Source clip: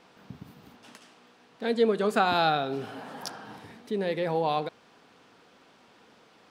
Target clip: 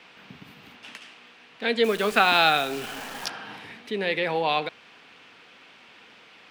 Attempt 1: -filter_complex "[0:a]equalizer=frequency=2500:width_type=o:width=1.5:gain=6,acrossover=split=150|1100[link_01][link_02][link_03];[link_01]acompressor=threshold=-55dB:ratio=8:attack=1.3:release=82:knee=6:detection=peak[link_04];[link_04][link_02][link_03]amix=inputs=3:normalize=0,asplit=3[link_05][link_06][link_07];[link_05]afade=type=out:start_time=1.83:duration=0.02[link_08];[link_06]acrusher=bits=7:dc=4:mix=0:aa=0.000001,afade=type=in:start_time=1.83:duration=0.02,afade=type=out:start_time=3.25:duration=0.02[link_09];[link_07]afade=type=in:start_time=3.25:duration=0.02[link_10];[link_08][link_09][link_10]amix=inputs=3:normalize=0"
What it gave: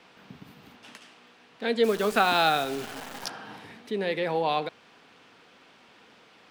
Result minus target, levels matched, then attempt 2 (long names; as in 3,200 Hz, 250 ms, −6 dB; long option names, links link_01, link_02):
2,000 Hz band −2.5 dB
-filter_complex "[0:a]equalizer=frequency=2500:width_type=o:width=1.5:gain=14,acrossover=split=150|1100[link_01][link_02][link_03];[link_01]acompressor=threshold=-55dB:ratio=8:attack=1.3:release=82:knee=6:detection=peak[link_04];[link_04][link_02][link_03]amix=inputs=3:normalize=0,asplit=3[link_05][link_06][link_07];[link_05]afade=type=out:start_time=1.83:duration=0.02[link_08];[link_06]acrusher=bits=7:dc=4:mix=0:aa=0.000001,afade=type=in:start_time=1.83:duration=0.02,afade=type=out:start_time=3.25:duration=0.02[link_09];[link_07]afade=type=in:start_time=3.25:duration=0.02[link_10];[link_08][link_09][link_10]amix=inputs=3:normalize=0"